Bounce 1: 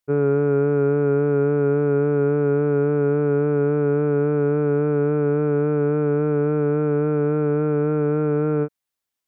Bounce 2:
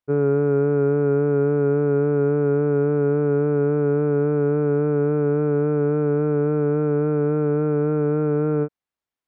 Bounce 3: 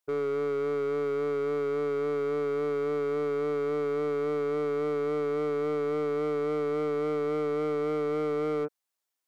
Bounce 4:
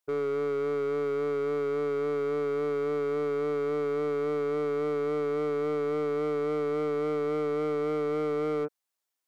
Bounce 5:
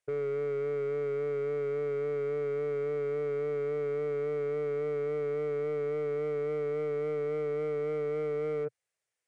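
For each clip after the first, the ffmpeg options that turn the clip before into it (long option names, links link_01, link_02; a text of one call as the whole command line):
ffmpeg -i in.wav -af "lowpass=frequency=1800:poles=1" out.wav
ffmpeg -i in.wav -af "bass=frequency=250:gain=-14,treble=frequency=4000:gain=9,alimiter=limit=-21.5dB:level=0:latency=1:release=45,asoftclip=type=hard:threshold=-26.5dB" out.wav
ffmpeg -i in.wav -af anull out.wav
ffmpeg -i in.wav -af "equalizer=frequency=125:width_type=o:width=1:gain=12,equalizer=frequency=250:width_type=o:width=1:gain=-10,equalizer=frequency=500:width_type=o:width=1:gain=9,equalizer=frequency=1000:width_type=o:width=1:gain=-7,equalizer=frequency=2000:width_type=o:width=1:gain=7,equalizer=frequency=4000:width_type=o:width=1:gain=-5,alimiter=level_in=3.5dB:limit=-24dB:level=0:latency=1:release=11,volume=-3.5dB,aresample=22050,aresample=44100" out.wav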